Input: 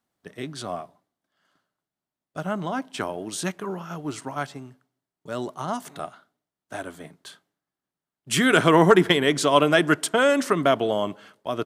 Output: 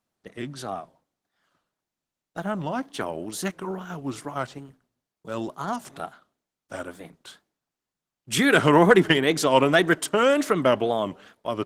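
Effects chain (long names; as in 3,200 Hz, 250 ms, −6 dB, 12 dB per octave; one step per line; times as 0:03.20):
tape wow and flutter 150 cents
Opus 16 kbit/s 48,000 Hz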